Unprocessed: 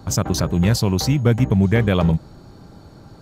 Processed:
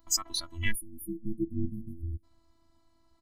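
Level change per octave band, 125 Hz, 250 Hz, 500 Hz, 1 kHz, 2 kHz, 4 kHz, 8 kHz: -22.5 dB, -18.0 dB, -22.0 dB, under -15 dB, -10.0 dB, -7.5 dB, -5.5 dB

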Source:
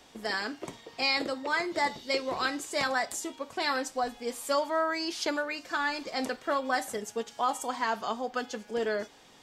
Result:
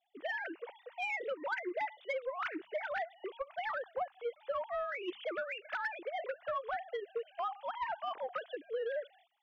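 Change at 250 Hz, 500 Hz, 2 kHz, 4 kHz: -13.5 dB, -5.5 dB, -7.5 dB, -16.5 dB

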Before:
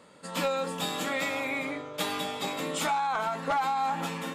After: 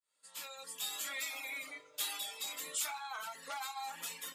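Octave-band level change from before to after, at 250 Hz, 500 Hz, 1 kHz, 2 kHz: -27.5 dB, -22.0 dB, -16.0 dB, -9.5 dB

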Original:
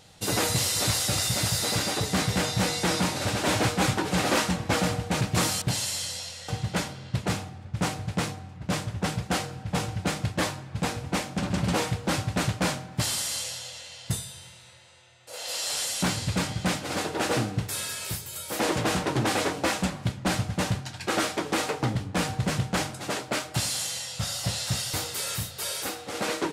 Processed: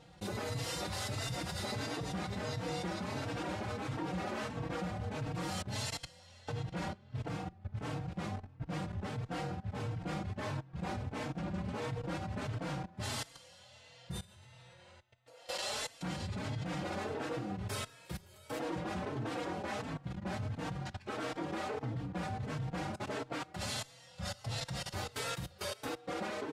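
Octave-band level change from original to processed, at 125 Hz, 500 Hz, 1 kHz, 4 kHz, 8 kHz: -9.5 dB, -9.5 dB, -10.0 dB, -14.0 dB, -18.0 dB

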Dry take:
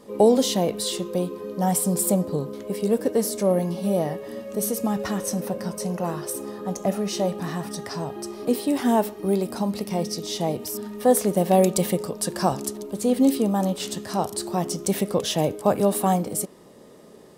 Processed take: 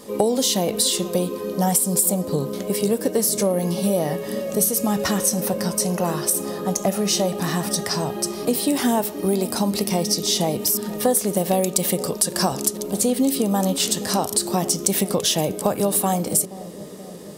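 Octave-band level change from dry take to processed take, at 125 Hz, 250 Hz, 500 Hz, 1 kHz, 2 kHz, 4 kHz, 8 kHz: +2.0 dB, +1.0 dB, +0.5 dB, +1.0 dB, +5.0 dB, +7.5 dB, +8.5 dB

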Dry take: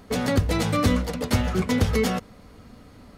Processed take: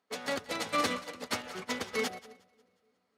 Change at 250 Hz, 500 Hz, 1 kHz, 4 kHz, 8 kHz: -16.5 dB, -10.0 dB, -5.5 dB, -5.0 dB, -6.5 dB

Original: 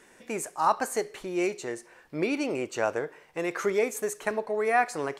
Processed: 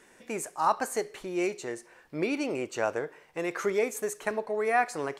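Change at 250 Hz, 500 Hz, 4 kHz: -1.5 dB, -1.5 dB, -1.5 dB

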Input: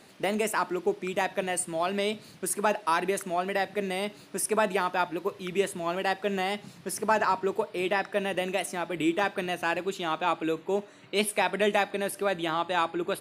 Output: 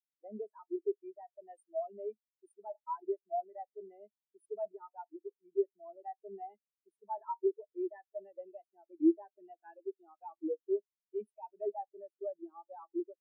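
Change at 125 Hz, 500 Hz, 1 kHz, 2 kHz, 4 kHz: under -30 dB, -9.5 dB, -15.5 dB, under -35 dB, under -40 dB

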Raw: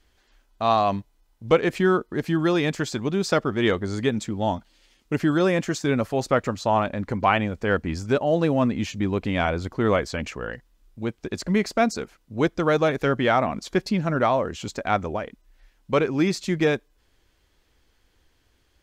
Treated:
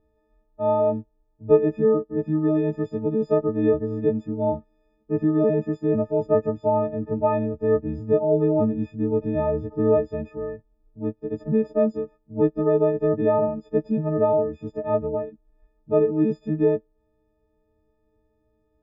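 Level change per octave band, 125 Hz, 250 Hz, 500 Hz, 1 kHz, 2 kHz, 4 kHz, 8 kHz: -1.5 dB, +0.5 dB, +3.0 dB, -6.5 dB, -17.0 dB, under -25 dB, under -30 dB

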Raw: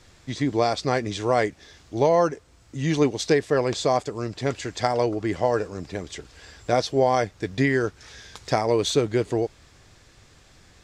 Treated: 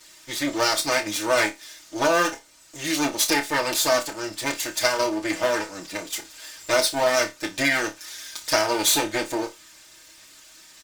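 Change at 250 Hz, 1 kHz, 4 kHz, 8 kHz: -2.5 dB, 0.0 dB, +7.5 dB, +11.5 dB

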